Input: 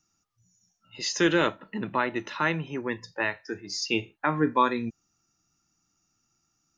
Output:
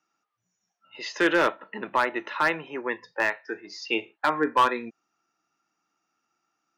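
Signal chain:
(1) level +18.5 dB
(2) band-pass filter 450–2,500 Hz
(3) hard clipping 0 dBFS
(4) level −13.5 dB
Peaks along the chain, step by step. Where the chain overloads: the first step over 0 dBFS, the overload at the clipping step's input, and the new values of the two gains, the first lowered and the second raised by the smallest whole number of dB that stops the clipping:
+9.0, +7.5, 0.0, −13.5 dBFS
step 1, 7.5 dB
step 1 +10.5 dB, step 4 −5.5 dB

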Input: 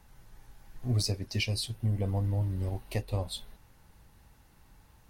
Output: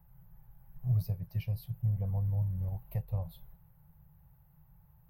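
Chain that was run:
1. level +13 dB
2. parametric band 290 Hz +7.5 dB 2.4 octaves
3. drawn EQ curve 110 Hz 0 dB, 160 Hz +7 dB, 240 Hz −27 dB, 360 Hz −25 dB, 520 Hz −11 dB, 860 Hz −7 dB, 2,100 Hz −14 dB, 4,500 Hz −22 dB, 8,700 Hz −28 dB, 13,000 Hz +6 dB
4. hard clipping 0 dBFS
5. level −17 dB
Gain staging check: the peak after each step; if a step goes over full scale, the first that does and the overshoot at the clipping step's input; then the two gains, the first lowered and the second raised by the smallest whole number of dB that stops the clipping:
−5.0, −2.0, −3.5, −3.5, −20.5 dBFS
no step passes full scale

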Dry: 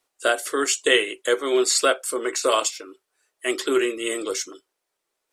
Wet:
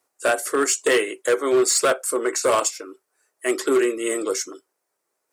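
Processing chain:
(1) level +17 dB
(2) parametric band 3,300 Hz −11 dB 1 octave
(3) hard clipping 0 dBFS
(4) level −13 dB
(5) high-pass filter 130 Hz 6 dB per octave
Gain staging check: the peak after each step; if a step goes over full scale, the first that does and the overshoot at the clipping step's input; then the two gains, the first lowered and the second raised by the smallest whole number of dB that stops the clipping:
+12.5, +9.5, 0.0, −13.0, −10.5 dBFS
step 1, 9.5 dB
step 1 +7 dB, step 4 −3 dB

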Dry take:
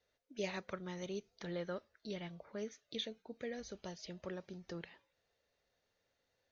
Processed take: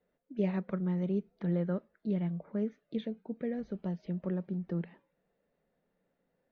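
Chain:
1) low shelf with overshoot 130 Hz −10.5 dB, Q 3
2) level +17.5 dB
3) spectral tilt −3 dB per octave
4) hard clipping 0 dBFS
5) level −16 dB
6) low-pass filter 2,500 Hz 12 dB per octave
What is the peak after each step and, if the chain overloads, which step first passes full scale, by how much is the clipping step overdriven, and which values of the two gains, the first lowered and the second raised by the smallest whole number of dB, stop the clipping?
−24.5, −7.0, −3.5, −3.5, −19.5, −20.0 dBFS
no step passes full scale

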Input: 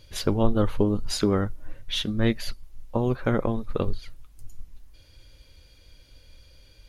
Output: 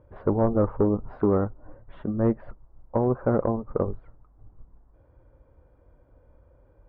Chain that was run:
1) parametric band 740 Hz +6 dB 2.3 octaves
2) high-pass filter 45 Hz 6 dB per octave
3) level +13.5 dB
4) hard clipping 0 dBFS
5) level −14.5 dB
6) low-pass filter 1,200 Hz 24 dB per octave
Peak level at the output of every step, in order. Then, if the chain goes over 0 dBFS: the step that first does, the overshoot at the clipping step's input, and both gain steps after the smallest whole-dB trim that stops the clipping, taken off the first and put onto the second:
−5.5, −5.5, +8.0, 0.0, −14.5, −13.0 dBFS
step 3, 8.0 dB
step 3 +5.5 dB, step 5 −6.5 dB

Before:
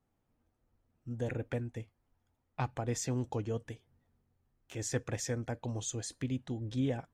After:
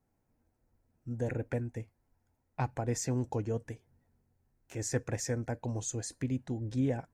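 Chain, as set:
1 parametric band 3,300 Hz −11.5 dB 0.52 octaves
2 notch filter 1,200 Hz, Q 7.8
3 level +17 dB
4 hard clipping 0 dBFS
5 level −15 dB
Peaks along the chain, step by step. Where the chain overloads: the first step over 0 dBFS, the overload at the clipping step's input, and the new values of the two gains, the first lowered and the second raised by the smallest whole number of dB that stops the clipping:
−20.0, −20.5, −3.5, −3.5, −18.5 dBFS
no step passes full scale

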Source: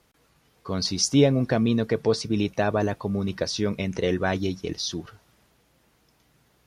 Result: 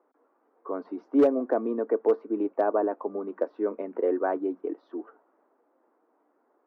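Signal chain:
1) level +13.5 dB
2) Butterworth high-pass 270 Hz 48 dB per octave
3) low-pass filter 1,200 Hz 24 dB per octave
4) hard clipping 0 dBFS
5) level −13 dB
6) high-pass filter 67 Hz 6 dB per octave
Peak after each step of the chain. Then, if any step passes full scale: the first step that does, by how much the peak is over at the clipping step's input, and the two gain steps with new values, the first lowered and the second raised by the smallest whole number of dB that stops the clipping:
+6.0, +5.0, +5.0, 0.0, −13.0, −12.0 dBFS
step 1, 5.0 dB
step 1 +8.5 dB, step 5 −8 dB

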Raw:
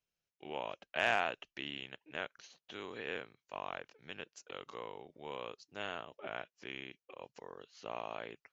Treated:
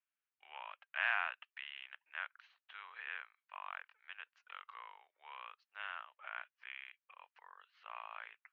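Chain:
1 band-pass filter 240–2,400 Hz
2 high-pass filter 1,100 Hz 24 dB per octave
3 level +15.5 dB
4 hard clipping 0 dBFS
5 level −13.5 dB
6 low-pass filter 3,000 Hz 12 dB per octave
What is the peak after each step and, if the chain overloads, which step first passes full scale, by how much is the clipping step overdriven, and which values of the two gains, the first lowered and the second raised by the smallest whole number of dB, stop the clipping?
−17.5, −20.0, −4.5, −4.5, −18.0, −19.0 dBFS
no step passes full scale

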